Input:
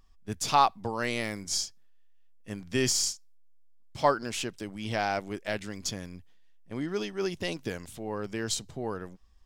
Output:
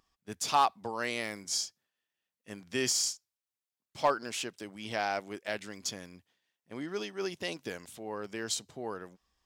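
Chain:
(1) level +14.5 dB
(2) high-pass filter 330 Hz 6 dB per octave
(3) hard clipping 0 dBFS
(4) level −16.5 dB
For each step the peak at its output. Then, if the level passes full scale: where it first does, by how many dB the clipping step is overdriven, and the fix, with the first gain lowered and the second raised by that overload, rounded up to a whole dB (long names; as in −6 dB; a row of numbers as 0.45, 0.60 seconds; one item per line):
+5.0, +4.5, 0.0, −16.5 dBFS
step 1, 4.5 dB
step 1 +9.5 dB, step 4 −11.5 dB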